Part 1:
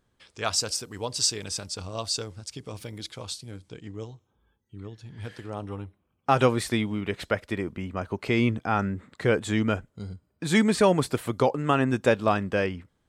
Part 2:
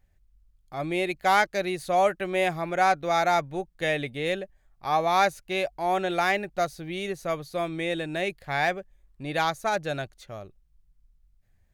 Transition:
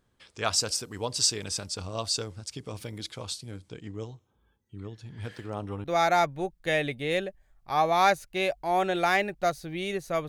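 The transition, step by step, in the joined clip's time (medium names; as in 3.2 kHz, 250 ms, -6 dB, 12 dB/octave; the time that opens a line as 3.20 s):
part 1
5.34–5.84 s: median filter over 3 samples
5.84 s: go over to part 2 from 2.99 s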